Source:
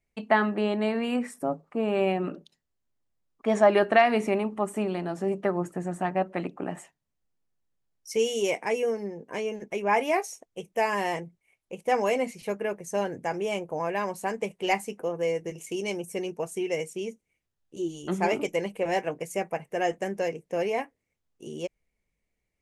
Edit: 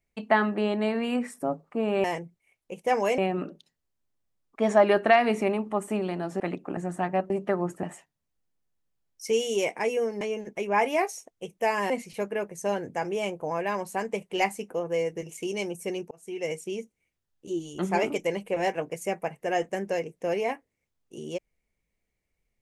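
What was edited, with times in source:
5.26–5.79 swap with 6.32–6.69
9.07–9.36 cut
11.05–12.19 move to 2.04
16.4–16.83 fade in

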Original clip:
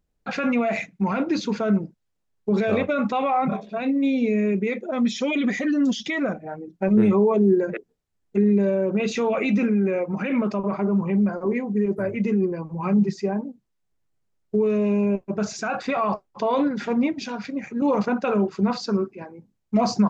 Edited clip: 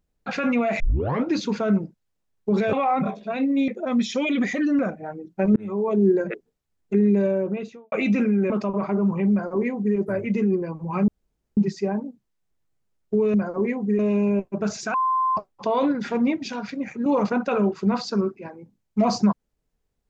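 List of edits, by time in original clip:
0.8 tape start 0.45 s
2.73–3.19 cut
4.14–4.74 cut
5.85–6.22 cut
6.99–7.49 fade in
8.68–9.35 studio fade out
9.93–10.4 cut
11.21–11.86 copy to 14.75
12.98 insert room tone 0.49 s
15.7–16.13 bleep 1040 Hz -18.5 dBFS

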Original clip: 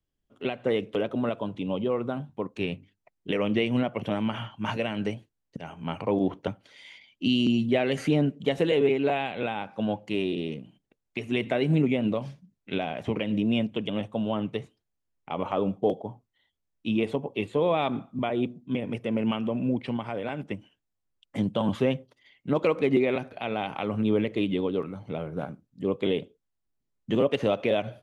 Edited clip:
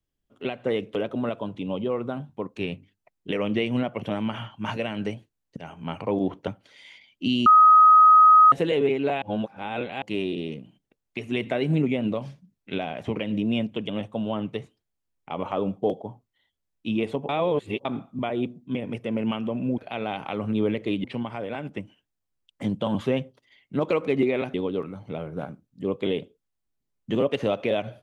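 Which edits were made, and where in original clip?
7.46–8.52 bleep 1260 Hz -10 dBFS
9.22–10.02 reverse
17.29–17.85 reverse
23.28–24.54 move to 19.78

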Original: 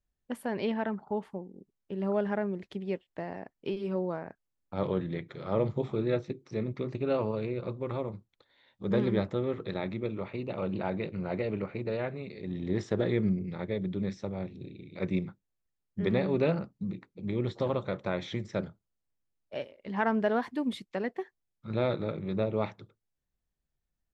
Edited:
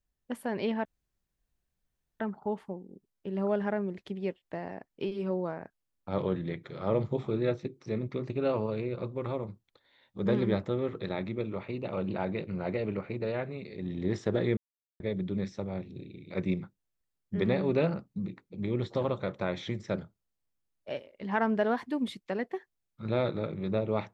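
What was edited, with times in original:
0.85 insert room tone 1.35 s
13.22–13.65 mute

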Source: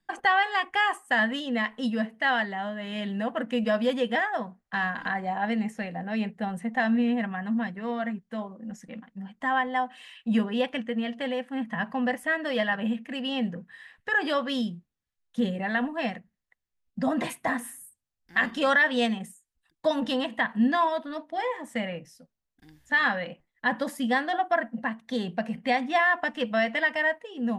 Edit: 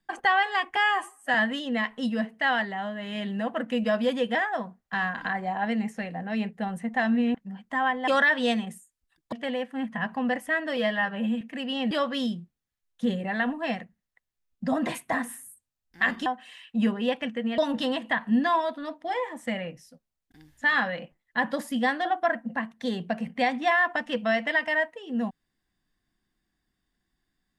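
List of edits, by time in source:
0.76–1.15 stretch 1.5×
7.15–9.05 cut
9.78–11.1 swap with 18.61–19.86
12.54–12.97 stretch 1.5×
13.47–14.26 cut

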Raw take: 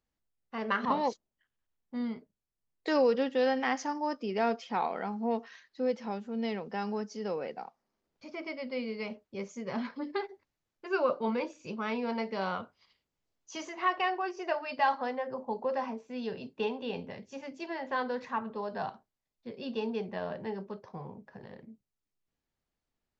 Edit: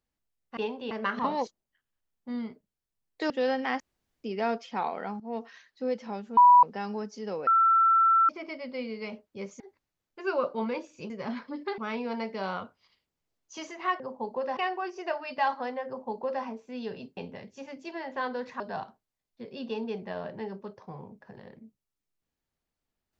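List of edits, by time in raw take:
2.96–3.28 cut
3.78–4.22 room tone
5.18–5.43 fade in, from -15.5 dB
6.35–6.61 bleep 980 Hz -12.5 dBFS
7.45–8.27 bleep 1340 Hz -18 dBFS
9.58–10.26 move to 11.76
15.28–15.85 copy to 13.98
16.58–16.92 move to 0.57
18.35–18.66 cut

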